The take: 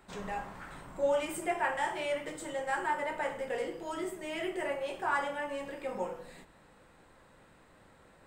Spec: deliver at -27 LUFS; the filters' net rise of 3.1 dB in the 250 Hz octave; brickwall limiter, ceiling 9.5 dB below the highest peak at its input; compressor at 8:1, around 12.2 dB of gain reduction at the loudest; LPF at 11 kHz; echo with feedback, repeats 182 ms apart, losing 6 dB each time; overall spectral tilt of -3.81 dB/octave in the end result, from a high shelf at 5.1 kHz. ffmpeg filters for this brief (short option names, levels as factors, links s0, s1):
-af "lowpass=11000,equalizer=f=250:t=o:g=4.5,highshelf=f=5100:g=-5.5,acompressor=threshold=0.0141:ratio=8,alimiter=level_in=4.73:limit=0.0631:level=0:latency=1,volume=0.211,aecho=1:1:182|364|546|728|910|1092:0.501|0.251|0.125|0.0626|0.0313|0.0157,volume=7.5"